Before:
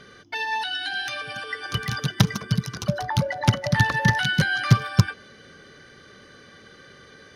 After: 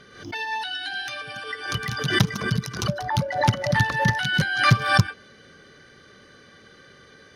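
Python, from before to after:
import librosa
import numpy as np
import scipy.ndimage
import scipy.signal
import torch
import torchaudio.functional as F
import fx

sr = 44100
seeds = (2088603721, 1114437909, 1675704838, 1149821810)

y = fx.pre_swell(x, sr, db_per_s=86.0)
y = y * 10.0 ** (-2.0 / 20.0)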